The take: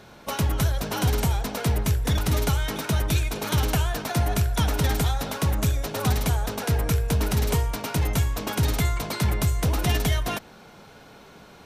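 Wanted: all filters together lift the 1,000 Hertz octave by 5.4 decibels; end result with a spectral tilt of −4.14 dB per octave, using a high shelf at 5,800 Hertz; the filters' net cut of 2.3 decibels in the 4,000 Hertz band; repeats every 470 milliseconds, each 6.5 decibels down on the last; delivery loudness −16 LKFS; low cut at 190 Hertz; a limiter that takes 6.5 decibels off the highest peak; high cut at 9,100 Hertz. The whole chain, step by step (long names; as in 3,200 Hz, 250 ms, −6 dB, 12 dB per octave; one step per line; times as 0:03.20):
high-pass filter 190 Hz
low-pass filter 9,100 Hz
parametric band 1,000 Hz +7 dB
parametric band 4,000 Hz −6.5 dB
high-shelf EQ 5,800 Hz +8.5 dB
brickwall limiter −17 dBFS
repeating echo 470 ms, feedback 47%, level −6.5 dB
level +12 dB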